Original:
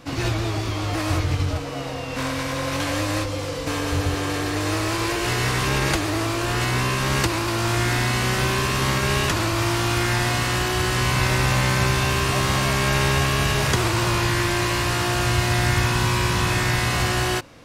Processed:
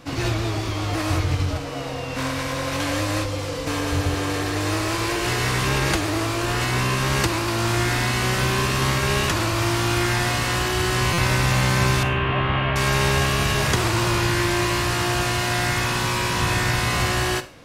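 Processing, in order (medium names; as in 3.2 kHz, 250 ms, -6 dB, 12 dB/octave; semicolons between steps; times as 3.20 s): 12.03–12.76 s: elliptic low-pass 3.1 kHz, stop band 70 dB; 15.23–16.40 s: peaking EQ 72 Hz -10 dB 1.2 oct; Schroeder reverb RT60 0.39 s, combs from 31 ms, DRR 13 dB; buffer glitch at 11.13 s, samples 256, times 8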